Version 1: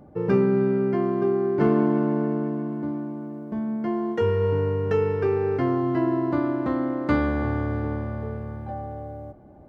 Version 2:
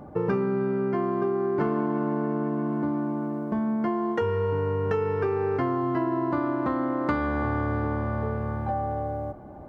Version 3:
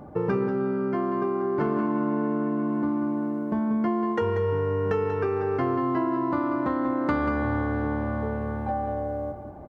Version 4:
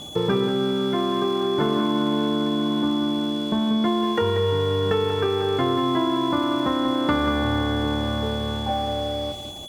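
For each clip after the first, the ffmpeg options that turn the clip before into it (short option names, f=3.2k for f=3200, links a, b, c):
-af "equalizer=f=1.1k:t=o:w=1.2:g=7,acompressor=threshold=-28dB:ratio=5,volume=4.5dB"
-af "aecho=1:1:187:0.376"
-af "aeval=exprs='val(0)+0.0158*sin(2*PI*3400*n/s)':c=same,aeval=exprs='sgn(val(0))*max(abs(val(0))-0.00596,0)':c=same,volume=4dB"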